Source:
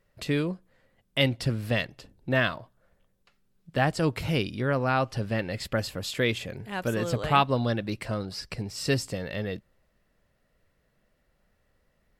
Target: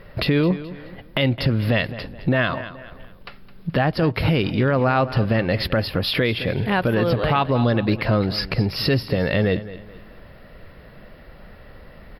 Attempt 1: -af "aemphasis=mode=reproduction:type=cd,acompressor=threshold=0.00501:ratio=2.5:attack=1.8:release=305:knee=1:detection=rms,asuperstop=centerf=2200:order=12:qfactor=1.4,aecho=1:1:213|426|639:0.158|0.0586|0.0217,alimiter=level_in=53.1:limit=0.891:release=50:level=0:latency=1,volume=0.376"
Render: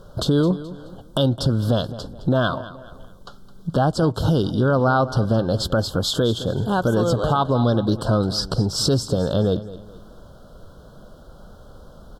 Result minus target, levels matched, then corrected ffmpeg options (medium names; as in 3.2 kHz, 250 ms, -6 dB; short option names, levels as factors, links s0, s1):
8 kHz band +17.0 dB
-af "aemphasis=mode=reproduction:type=cd,acompressor=threshold=0.00501:ratio=2.5:attack=1.8:release=305:knee=1:detection=rms,asuperstop=centerf=7600:order=12:qfactor=1.4,aecho=1:1:213|426|639:0.158|0.0586|0.0217,alimiter=level_in=53.1:limit=0.891:release=50:level=0:latency=1,volume=0.376"